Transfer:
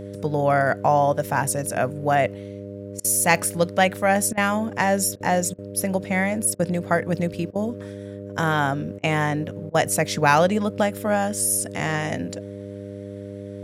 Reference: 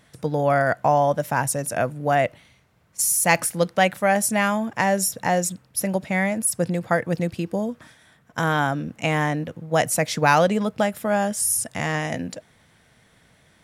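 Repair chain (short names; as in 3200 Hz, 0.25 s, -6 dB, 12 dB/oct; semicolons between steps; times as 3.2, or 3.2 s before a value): de-hum 100 Hz, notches 6; interpolate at 3/4.33/5.16/5.54/6.55/7.51/8.99/9.7, 43 ms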